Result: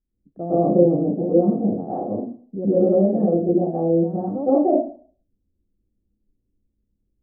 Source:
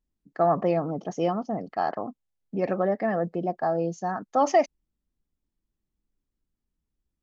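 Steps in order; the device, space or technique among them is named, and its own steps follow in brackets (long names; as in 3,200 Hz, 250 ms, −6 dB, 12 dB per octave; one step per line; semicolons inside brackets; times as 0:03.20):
next room (low-pass filter 490 Hz 24 dB per octave; convolution reverb RT60 0.45 s, pre-delay 107 ms, DRR −11 dB)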